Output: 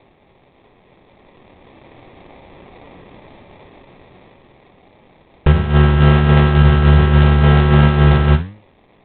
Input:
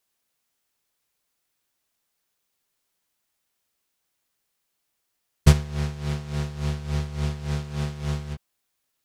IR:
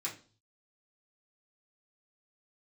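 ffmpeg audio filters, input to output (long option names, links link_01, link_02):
-filter_complex "[0:a]dynaudnorm=framelen=200:gausssize=17:maxgain=12dB,asplit=3[link_01][link_02][link_03];[link_01]afade=type=out:start_time=7.25:duration=0.02[link_04];[link_02]bandreject=frequency=60:width_type=h:width=6,bandreject=frequency=120:width_type=h:width=6,bandreject=frequency=180:width_type=h:width=6,bandreject=frequency=240:width_type=h:width=6,bandreject=frequency=300:width_type=h:width=6,bandreject=frequency=360:width_type=h:width=6,bandreject=frequency=420:width_type=h:width=6,bandreject=frequency=480:width_type=h:width=6,bandreject=frequency=540:width_type=h:width=6,bandreject=frequency=600:width_type=h:width=6,afade=type=in:start_time=7.25:duration=0.02,afade=type=out:start_time=8.01:duration=0.02[link_05];[link_03]afade=type=in:start_time=8.01:duration=0.02[link_06];[link_04][link_05][link_06]amix=inputs=3:normalize=0,acrusher=samples=30:mix=1:aa=0.000001,asplit=2[link_07][link_08];[link_08]highshelf=frequency=2100:gain=5[link_09];[1:a]atrim=start_sample=2205,atrim=end_sample=3528[link_10];[link_09][link_10]afir=irnorm=-1:irlink=0,volume=-13dB[link_11];[link_07][link_11]amix=inputs=2:normalize=0,acompressor=threshold=-30dB:ratio=4,flanger=delay=9.4:depth=6.5:regen=85:speed=1.4:shape=sinusoidal,alimiter=level_in=30dB:limit=-1dB:release=50:level=0:latency=1,volume=-1dB" -ar 8000 -c:a adpcm_g726 -b:a 24k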